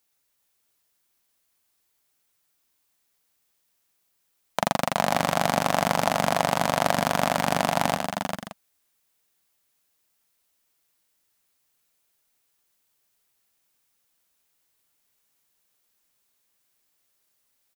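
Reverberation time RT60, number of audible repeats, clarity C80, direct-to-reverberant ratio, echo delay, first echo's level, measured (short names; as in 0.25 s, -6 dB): none, 4, none, none, 90 ms, -11.5 dB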